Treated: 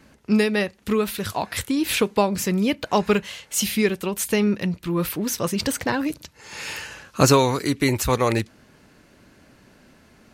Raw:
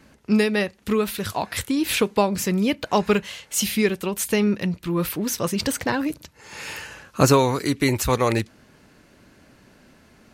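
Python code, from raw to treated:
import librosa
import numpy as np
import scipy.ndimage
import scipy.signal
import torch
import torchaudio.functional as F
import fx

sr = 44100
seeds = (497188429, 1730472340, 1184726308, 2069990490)

y = fx.peak_eq(x, sr, hz=4600.0, db=3.5, octaves=2.0, at=(6.05, 7.57))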